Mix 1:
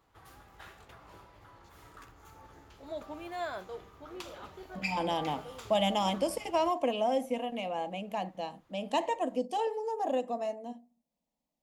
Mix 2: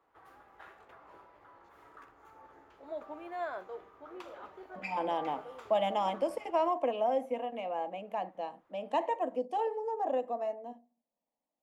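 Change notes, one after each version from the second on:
master: add three-band isolator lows -16 dB, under 280 Hz, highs -15 dB, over 2200 Hz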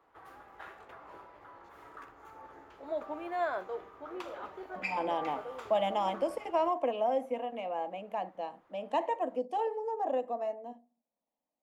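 background +5.0 dB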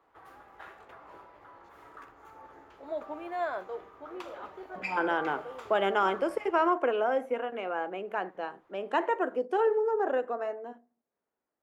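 speech: remove fixed phaser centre 390 Hz, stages 6

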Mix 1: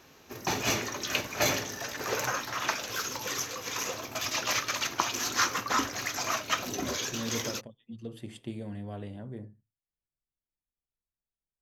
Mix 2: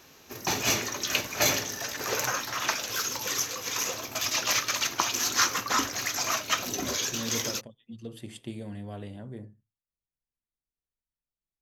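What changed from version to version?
master: add high shelf 3400 Hz +6.5 dB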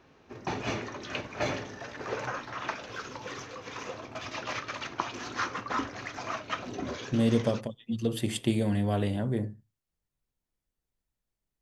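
speech +11.5 dB; background: add tape spacing loss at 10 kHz 34 dB

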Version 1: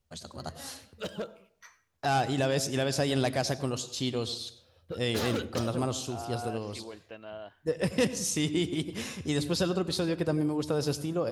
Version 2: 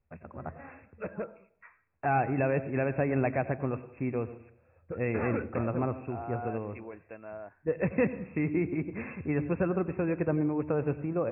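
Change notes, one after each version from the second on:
master: add brick-wall FIR low-pass 2700 Hz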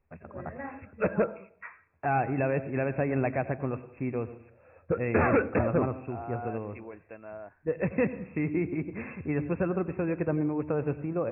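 background +10.5 dB

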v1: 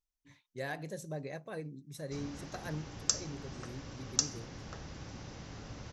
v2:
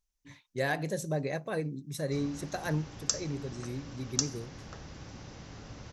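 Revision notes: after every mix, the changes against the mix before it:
speech +8.5 dB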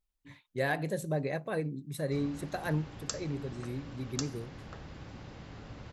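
master: add bell 5900 Hz -12 dB 0.56 oct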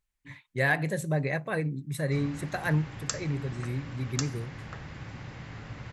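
master: add ten-band EQ 125 Hz +8 dB, 1000 Hz +3 dB, 2000 Hz +9 dB, 8000 Hz +5 dB

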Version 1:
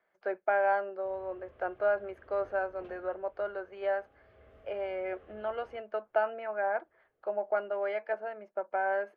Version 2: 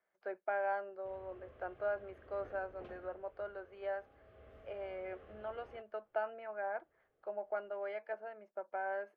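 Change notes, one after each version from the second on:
speech -8.5 dB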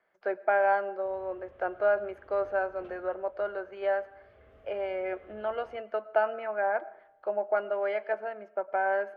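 speech +10.5 dB; reverb: on, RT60 0.75 s

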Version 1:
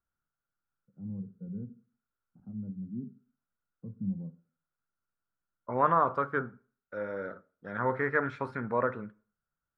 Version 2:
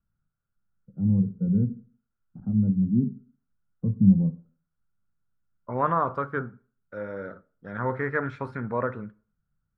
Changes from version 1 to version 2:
first voice +12.0 dB; master: add low shelf 170 Hz +9.5 dB

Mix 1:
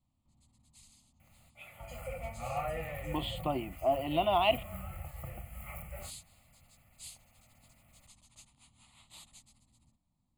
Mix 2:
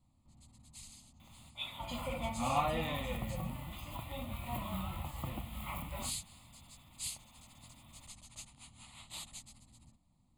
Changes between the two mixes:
speech: muted; first sound +7.5 dB; second sound: remove fixed phaser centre 990 Hz, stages 6

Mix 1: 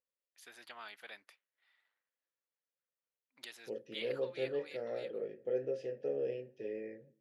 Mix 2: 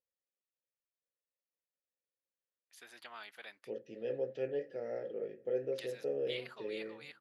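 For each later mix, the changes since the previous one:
first voice: entry +2.35 s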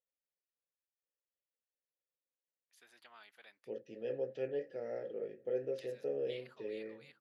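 first voice -9.0 dB; second voice: send -6.0 dB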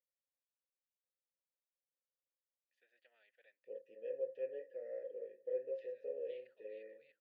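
master: add vowel filter e

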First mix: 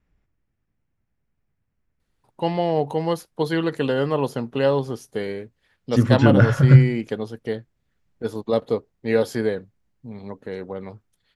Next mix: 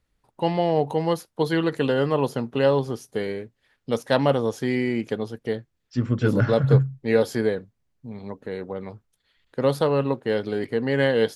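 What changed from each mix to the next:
first voice: entry -2.00 s; second voice -6.5 dB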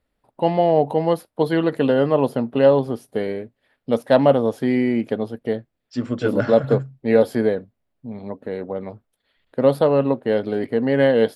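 second voice: add tone controls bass -9 dB, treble +14 dB; master: add fifteen-band EQ 250 Hz +6 dB, 630 Hz +8 dB, 6300 Hz -11 dB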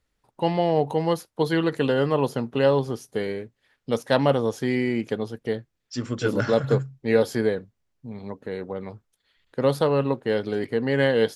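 master: add fifteen-band EQ 250 Hz -6 dB, 630 Hz -8 dB, 6300 Hz +11 dB

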